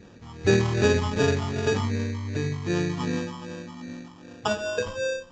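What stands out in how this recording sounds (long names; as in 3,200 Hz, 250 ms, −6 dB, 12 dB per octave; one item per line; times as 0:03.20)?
phaser sweep stages 12, 2.6 Hz, lowest notch 470–2,000 Hz
aliases and images of a low sample rate 2,100 Hz, jitter 0%
Ogg Vorbis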